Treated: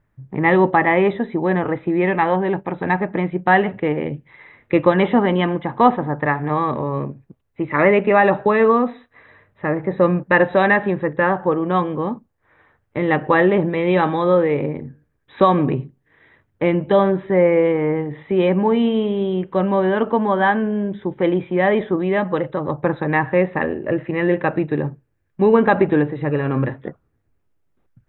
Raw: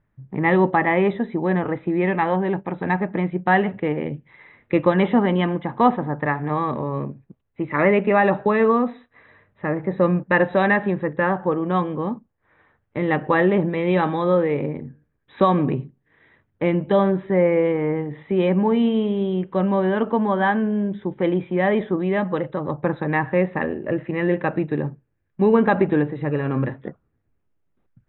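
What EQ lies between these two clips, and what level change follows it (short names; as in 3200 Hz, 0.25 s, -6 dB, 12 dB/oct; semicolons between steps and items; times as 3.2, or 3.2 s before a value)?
bell 200 Hz -3.5 dB 0.69 oct; +3.5 dB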